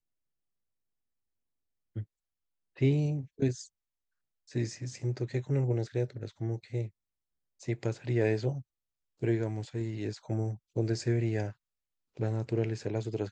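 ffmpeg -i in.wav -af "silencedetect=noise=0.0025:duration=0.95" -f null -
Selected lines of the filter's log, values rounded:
silence_start: 0.00
silence_end: 1.96 | silence_duration: 1.96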